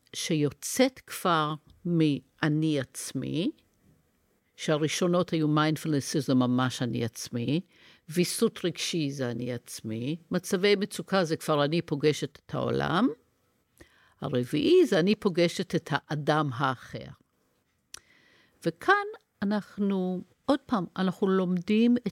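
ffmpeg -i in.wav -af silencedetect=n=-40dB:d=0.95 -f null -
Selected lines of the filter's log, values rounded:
silence_start: 3.50
silence_end: 4.59 | silence_duration: 1.09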